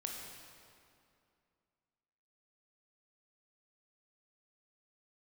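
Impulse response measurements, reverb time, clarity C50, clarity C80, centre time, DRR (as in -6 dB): 2.5 s, 1.5 dB, 3.0 dB, 92 ms, -0.5 dB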